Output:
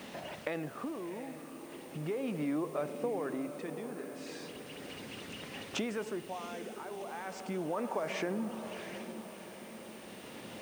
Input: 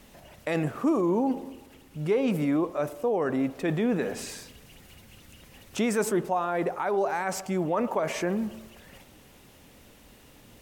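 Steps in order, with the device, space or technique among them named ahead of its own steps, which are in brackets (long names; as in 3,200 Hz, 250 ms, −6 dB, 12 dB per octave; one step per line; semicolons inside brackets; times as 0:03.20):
medium wave at night (band-pass filter 180–4,500 Hz; downward compressor 4 to 1, threshold −44 dBFS, peak gain reduction 19 dB; amplitude tremolo 0.37 Hz, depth 71%; steady tone 9,000 Hz −76 dBFS; white noise bed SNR 22 dB)
feedback delay with all-pass diffusion 720 ms, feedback 58%, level −10 dB
level +9 dB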